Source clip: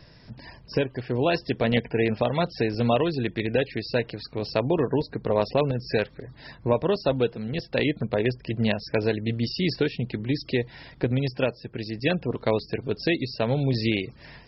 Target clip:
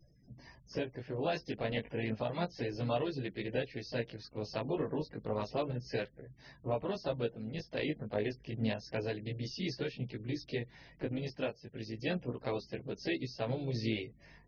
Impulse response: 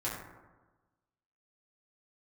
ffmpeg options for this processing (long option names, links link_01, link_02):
-filter_complex "[0:a]afftfilt=real='re*gte(hypot(re,im),0.00562)':imag='im*gte(hypot(re,im),0.00562)':win_size=1024:overlap=0.75,flanger=delay=15:depth=4.4:speed=0.31,asplit=2[link_01][link_02];[link_02]asetrate=52444,aresample=44100,atempo=0.840896,volume=-10dB[link_03];[link_01][link_03]amix=inputs=2:normalize=0,volume=-9dB"